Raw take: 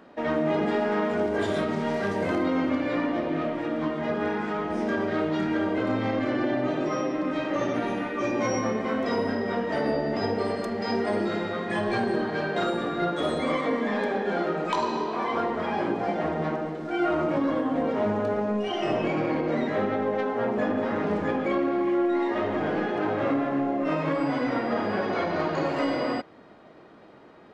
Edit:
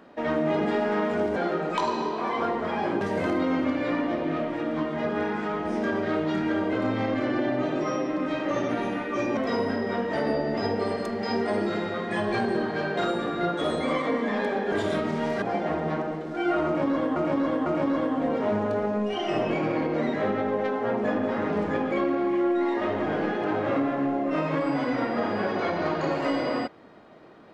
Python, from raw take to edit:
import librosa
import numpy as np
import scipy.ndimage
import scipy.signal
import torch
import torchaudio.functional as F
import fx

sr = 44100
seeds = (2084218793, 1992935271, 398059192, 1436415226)

y = fx.edit(x, sr, fx.swap(start_s=1.36, length_s=0.7, other_s=14.31, other_length_s=1.65),
    fx.cut(start_s=8.42, length_s=0.54),
    fx.repeat(start_s=17.2, length_s=0.5, count=3), tone=tone)